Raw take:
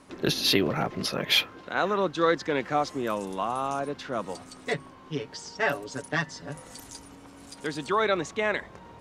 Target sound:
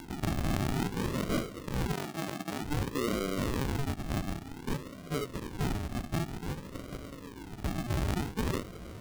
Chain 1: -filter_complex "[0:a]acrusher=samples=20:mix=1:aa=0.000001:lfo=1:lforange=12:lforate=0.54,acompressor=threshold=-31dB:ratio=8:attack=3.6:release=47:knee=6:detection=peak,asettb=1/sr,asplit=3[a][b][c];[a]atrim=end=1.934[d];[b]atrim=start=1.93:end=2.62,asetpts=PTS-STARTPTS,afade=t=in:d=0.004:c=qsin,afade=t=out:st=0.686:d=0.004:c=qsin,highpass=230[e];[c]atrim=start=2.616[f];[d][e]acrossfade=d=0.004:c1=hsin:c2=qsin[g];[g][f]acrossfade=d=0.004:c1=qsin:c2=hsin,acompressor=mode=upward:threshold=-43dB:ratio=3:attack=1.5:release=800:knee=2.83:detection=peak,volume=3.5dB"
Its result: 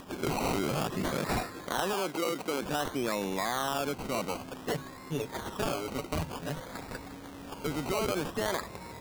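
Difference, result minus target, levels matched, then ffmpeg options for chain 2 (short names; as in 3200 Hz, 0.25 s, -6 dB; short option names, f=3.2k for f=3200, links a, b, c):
decimation with a swept rate: distortion -37 dB
-filter_complex "[0:a]acrusher=samples=71:mix=1:aa=0.000001:lfo=1:lforange=42.6:lforate=0.54,acompressor=threshold=-31dB:ratio=8:attack=3.6:release=47:knee=6:detection=peak,asettb=1/sr,asplit=3[a][b][c];[a]atrim=end=1.934[d];[b]atrim=start=1.93:end=2.62,asetpts=PTS-STARTPTS,afade=t=in:d=0.004:c=qsin,afade=t=out:st=0.686:d=0.004:c=qsin,highpass=230[e];[c]atrim=start=2.616[f];[d][e]acrossfade=d=0.004:c1=hsin:c2=qsin[g];[g][f]acrossfade=d=0.004:c1=qsin:c2=hsin,acompressor=mode=upward:threshold=-43dB:ratio=3:attack=1.5:release=800:knee=2.83:detection=peak,volume=3.5dB"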